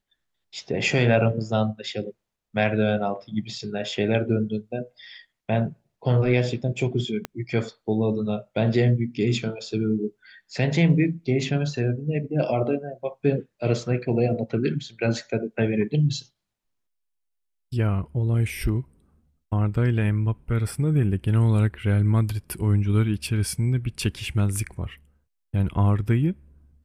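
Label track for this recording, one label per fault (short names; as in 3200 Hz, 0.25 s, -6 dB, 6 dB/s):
7.250000	7.250000	pop -14 dBFS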